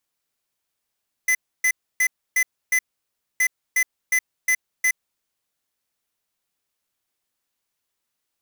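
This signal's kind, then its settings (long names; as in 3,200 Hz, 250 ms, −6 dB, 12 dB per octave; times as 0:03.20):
beeps in groups square 2,020 Hz, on 0.07 s, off 0.29 s, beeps 5, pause 0.61 s, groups 2, −18.5 dBFS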